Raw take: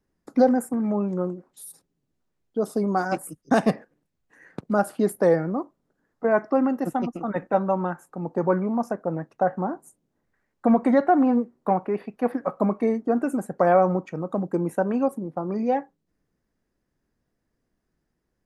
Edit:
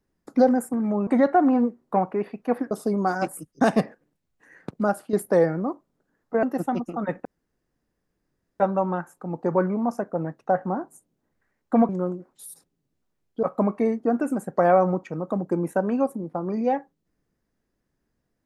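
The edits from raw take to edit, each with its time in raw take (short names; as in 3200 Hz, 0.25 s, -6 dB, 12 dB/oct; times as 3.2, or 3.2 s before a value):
1.07–2.61 swap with 10.81–12.45
4.71–5.03 fade out, to -9.5 dB
6.33–6.7 cut
7.52 insert room tone 1.35 s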